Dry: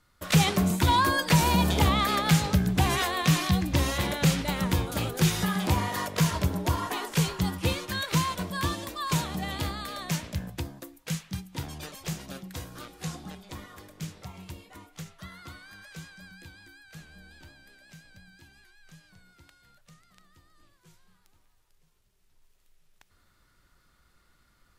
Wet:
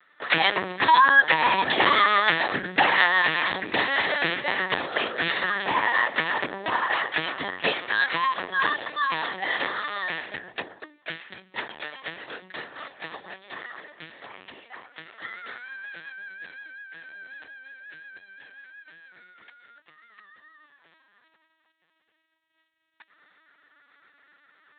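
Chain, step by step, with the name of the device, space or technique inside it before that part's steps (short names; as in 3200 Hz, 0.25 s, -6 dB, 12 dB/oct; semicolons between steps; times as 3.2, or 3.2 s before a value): talking toy (LPC vocoder at 8 kHz pitch kept; HPF 480 Hz 12 dB/oct; bell 1800 Hz +12 dB 0.28 oct); gain +6.5 dB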